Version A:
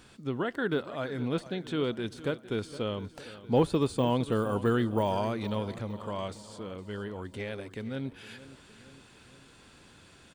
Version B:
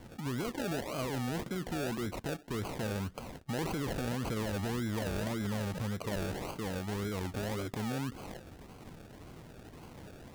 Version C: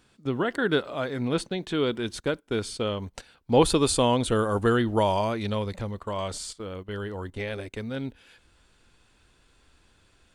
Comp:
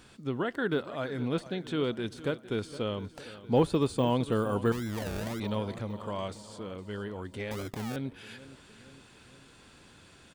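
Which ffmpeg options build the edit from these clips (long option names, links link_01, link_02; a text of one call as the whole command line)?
ffmpeg -i take0.wav -i take1.wav -filter_complex "[1:a]asplit=2[link_01][link_02];[0:a]asplit=3[link_03][link_04][link_05];[link_03]atrim=end=4.722[link_06];[link_01]atrim=start=4.718:end=5.402[link_07];[link_04]atrim=start=5.398:end=7.512[link_08];[link_02]atrim=start=7.508:end=7.962[link_09];[link_05]atrim=start=7.958[link_10];[link_06][link_07]acrossfade=duration=0.004:curve1=hsin:curve2=hsin[link_11];[link_11][link_08]acrossfade=duration=0.004:curve1=hsin:curve2=hsin[link_12];[link_12][link_09]acrossfade=duration=0.004:curve1=hsin:curve2=hsin[link_13];[link_13][link_10]acrossfade=duration=0.004:curve1=hsin:curve2=hsin" out.wav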